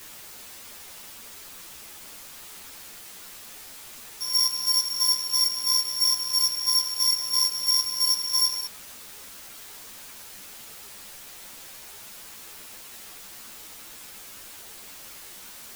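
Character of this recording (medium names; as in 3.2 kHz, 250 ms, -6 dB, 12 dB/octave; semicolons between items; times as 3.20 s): a buzz of ramps at a fixed pitch in blocks of 8 samples; chopped level 3 Hz, depth 65%, duty 40%; a quantiser's noise floor 8-bit, dither triangular; a shimmering, thickened sound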